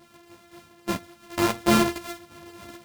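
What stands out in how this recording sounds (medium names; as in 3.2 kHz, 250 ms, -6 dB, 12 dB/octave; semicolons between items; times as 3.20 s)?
a buzz of ramps at a fixed pitch in blocks of 128 samples; tremolo saw down 3.9 Hz, depth 35%; a shimmering, thickened sound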